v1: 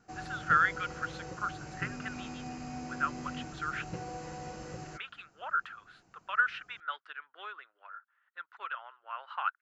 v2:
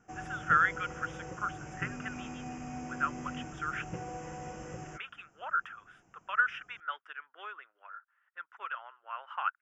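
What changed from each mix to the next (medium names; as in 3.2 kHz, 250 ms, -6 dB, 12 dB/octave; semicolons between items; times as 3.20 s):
master: add Butterworth band-stop 4.2 kHz, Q 2.1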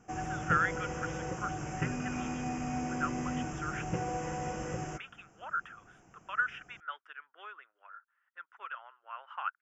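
speech -3.5 dB; background +6.0 dB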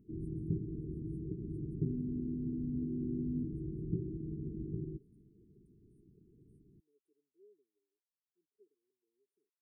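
master: add brick-wall FIR band-stop 440–8300 Hz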